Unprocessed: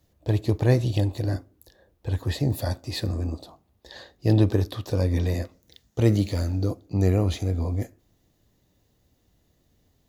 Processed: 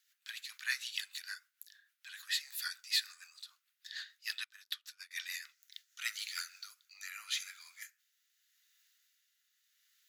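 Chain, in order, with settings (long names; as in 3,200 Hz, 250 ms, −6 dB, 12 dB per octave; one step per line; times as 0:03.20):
rotating-speaker cabinet horn 6.7 Hz, later 0.8 Hz, at 0:06.23
Chebyshev high-pass filter 1,400 Hz, order 5
0:04.44–0:05.11: expander for the loud parts 2.5 to 1, over −55 dBFS
level +4 dB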